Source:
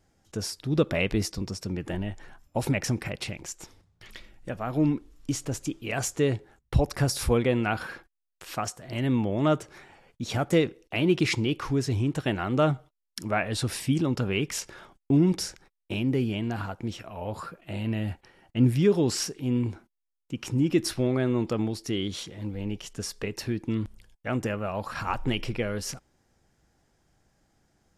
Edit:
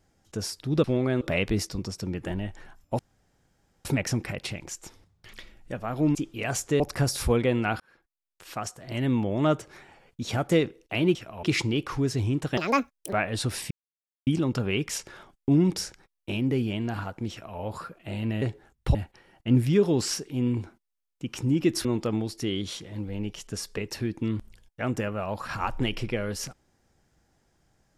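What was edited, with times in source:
0:02.62: splice in room tone 0.86 s
0:04.92–0:05.63: remove
0:06.28–0:06.81: move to 0:18.04
0:07.81–0:08.89: fade in
0:12.30–0:13.31: play speed 181%
0:13.89: splice in silence 0.56 s
0:16.93–0:17.21: duplicate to 0:11.16
0:20.94–0:21.31: move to 0:00.84

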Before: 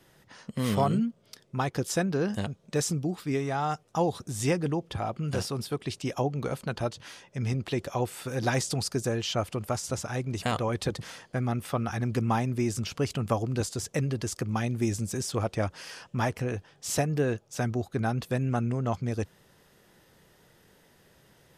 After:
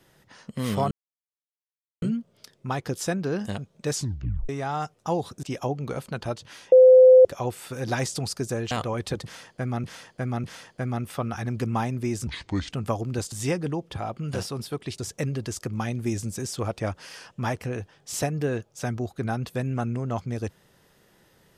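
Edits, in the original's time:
0:00.91: splice in silence 1.11 s
0:02.82: tape stop 0.56 s
0:04.32–0:05.98: move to 0:13.74
0:07.27–0:07.80: beep over 513 Hz −8.5 dBFS
0:09.26–0:10.46: remove
0:10.99–0:11.59: repeat, 3 plays
0:12.82–0:13.13: play speed 70%

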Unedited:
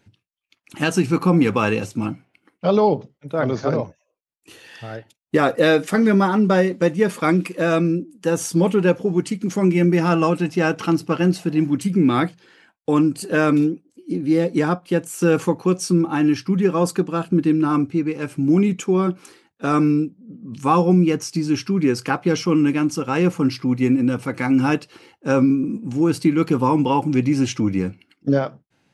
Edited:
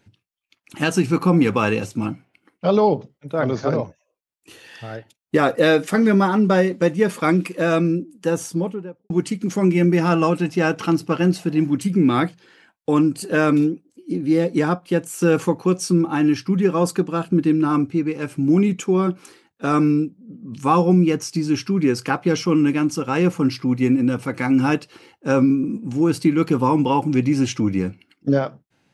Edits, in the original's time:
0:08.16–0:09.10: fade out and dull

